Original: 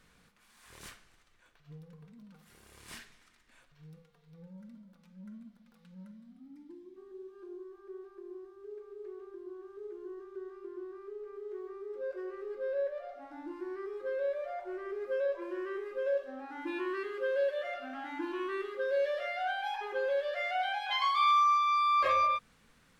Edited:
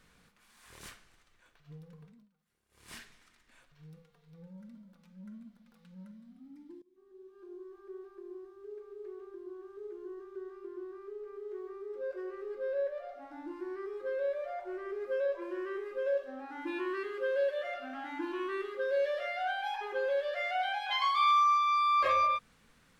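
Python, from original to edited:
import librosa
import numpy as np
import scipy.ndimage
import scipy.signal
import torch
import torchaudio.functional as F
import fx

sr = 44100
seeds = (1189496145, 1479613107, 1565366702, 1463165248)

y = fx.edit(x, sr, fx.fade_down_up(start_s=2.02, length_s=0.95, db=-22.0, fade_s=0.28),
    fx.fade_in_from(start_s=6.82, length_s=0.93, floor_db=-22.0), tone=tone)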